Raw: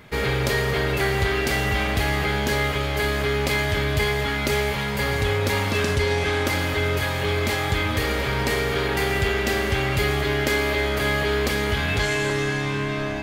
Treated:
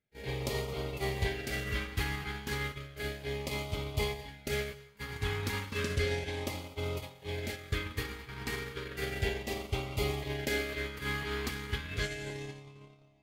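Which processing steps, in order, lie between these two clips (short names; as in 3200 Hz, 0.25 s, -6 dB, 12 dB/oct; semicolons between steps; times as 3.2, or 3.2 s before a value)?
gate -21 dBFS, range -32 dB; LFO notch sine 0.33 Hz 570–1700 Hz; on a send: reverb, pre-delay 3 ms, DRR 17 dB; on the sum: gain -7.5 dB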